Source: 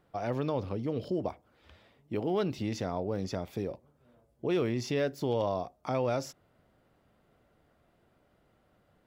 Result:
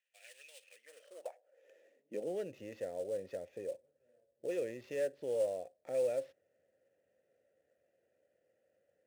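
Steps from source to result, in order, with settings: vowel filter e; sample-rate reducer 9 kHz, jitter 20%; high-pass sweep 2.7 kHz -> 79 Hz, 0.62–2.69 s; treble shelf 7.7 kHz -11.5 dB; trim +2 dB

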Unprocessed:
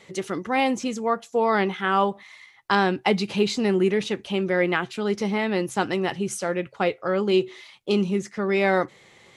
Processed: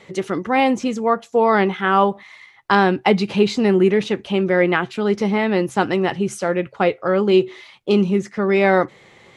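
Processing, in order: treble shelf 3.9 kHz -9 dB; trim +6 dB

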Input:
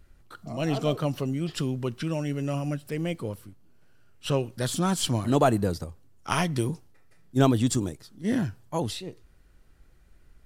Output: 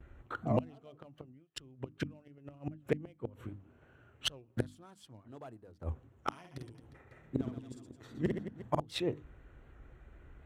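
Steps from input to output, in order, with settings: local Wiener filter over 9 samples; hard clipper -13.5 dBFS, distortion -23 dB; inverted gate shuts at -22 dBFS, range -34 dB; treble shelf 4.6 kHz -6 dB; hum notches 50/100/150/200/250/300 Hz; 6.39–8.80 s: reverse bouncing-ball echo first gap 50 ms, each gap 1.4×, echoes 5; gate with hold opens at -54 dBFS; high-pass 43 Hz; peaking EQ 180 Hz -10.5 dB 0.22 oct; warped record 78 rpm, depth 100 cents; trim +7 dB

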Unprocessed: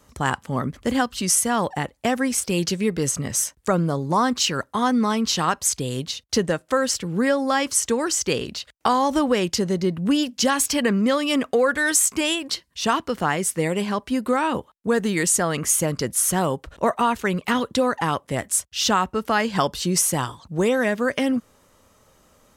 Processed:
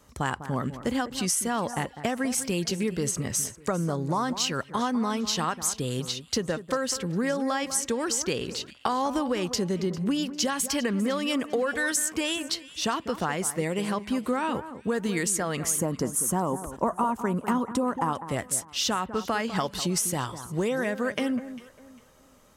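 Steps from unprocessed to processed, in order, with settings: 15.78–18.13 s: graphic EQ 250/1000/2000/4000/8000 Hz +8/+9/-6/-11/+4 dB; compression 4:1, threshold -22 dBFS, peak gain reduction 11 dB; echo whose repeats swap between lows and highs 200 ms, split 1.9 kHz, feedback 51%, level -12 dB; trim -2 dB

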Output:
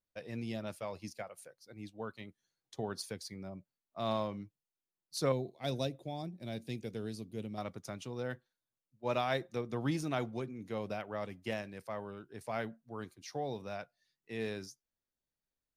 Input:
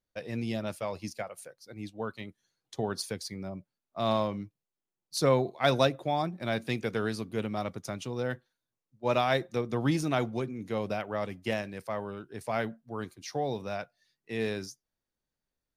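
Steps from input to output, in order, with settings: 5.32–7.58 s: peaking EQ 1.3 kHz -15 dB 1.8 oct; trim -6.5 dB

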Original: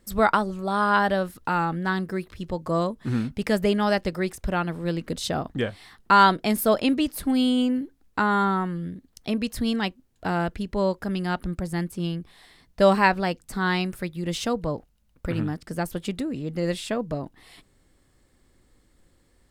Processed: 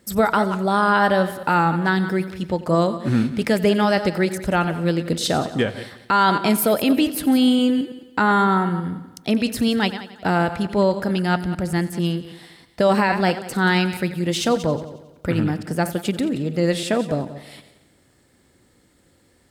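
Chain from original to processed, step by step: chunks repeated in reverse 110 ms, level -13 dB; high-pass 95 Hz 12 dB/octave; band-stop 1.1 kHz, Q 11; peak limiter -15 dBFS, peak gain reduction 9.5 dB; multi-head delay 90 ms, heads first and second, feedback 41%, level -18.5 dB; trim +6.5 dB

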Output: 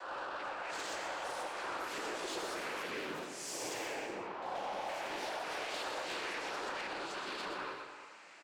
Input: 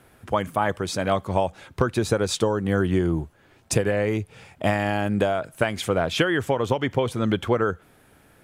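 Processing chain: reverse spectral sustain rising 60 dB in 0.75 s; 4.05–4.89 s: steep low-pass 1.1 kHz; de-esser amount 75%; high-pass 820 Hz 12 dB/octave; peak limiter -22 dBFS, peak gain reduction 11 dB; compression, threshold -38 dBFS, peak gain reduction 10.5 dB; noise-vocoded speech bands 8; saturation -37.5 dBFS, distortion -15 dB; delay 122 ms -6 dB; reverberation, pre-delay 3 ms, DRR 6.5 dB; ever faster or slower copies 671 ms, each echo +4 st, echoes 3, each echo -6 dB; trim +1 dB

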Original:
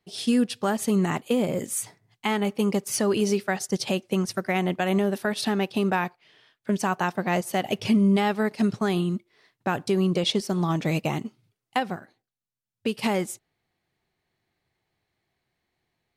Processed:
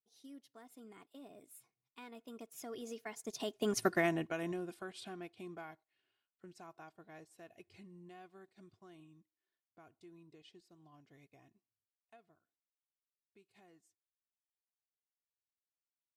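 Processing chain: Doppler pass-by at 3.86 s, 42 m/s, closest 5.4 m; comb 2.8 ms, depth 48%; trim -3 dB

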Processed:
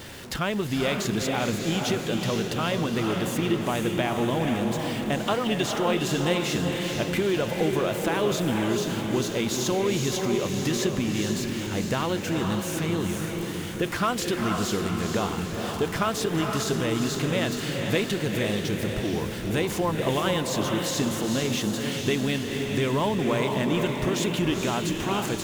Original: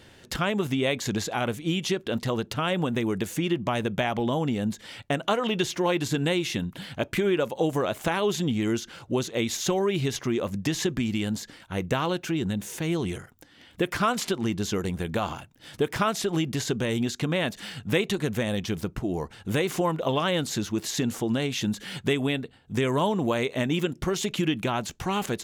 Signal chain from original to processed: jump at every zero crossing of -35 dBFS; echo that smears into a reverb 469 ms, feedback 55%, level -3.5 dB; trim -2 dB

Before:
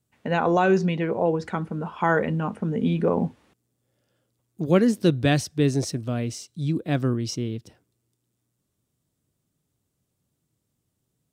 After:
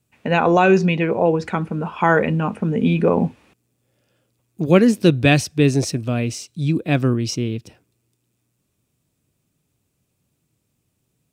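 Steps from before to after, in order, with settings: peaking EQ 2.5 kHz +9 dB 0.22 oct; trim +5.5 dB

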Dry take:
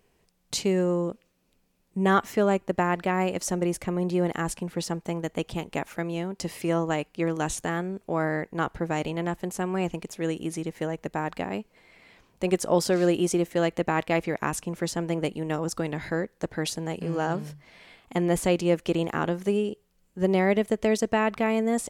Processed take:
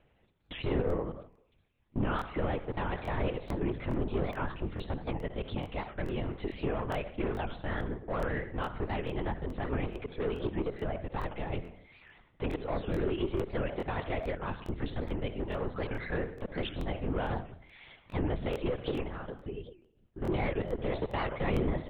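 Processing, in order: reverb removal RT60 0.89 s; 10.01–10.76 s: peaking EQ 780 Hz +12.5 dB 1.6 oct; 19.07–20.23 s: compression 2.5:1, threshold -44 dBFS, peak gain reduction 15.5 dB; peak limiter -20.5 dBFS, peak gain reduction 10.5 dB; saturation -25.5 dBFS, distortion -15 dB; reverberation RT60 0.70 s, pre-delay 48 ms, DRR 9.5 dB; LPC vocoder at 8 kHz whisper; crackling interface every 0.43 s, samples 1024, repeat, from 0.45 s; warped record 78 rpm, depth 250 cents

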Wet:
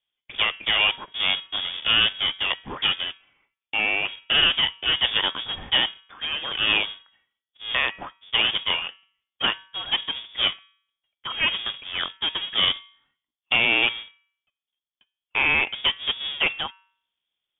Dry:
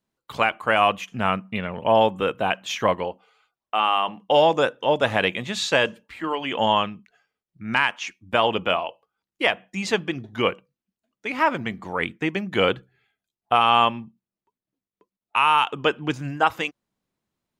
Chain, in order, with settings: square wave that keeps the level; de-hum 196.8 Hz, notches 13; frequency inversion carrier 3.5 kHz; trim -6 dB

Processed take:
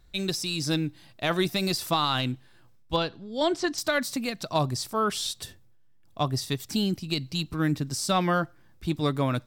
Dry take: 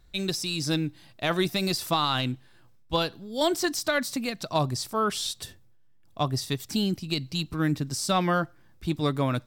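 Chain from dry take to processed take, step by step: 2.96–3.78 s: distance through air 96 m

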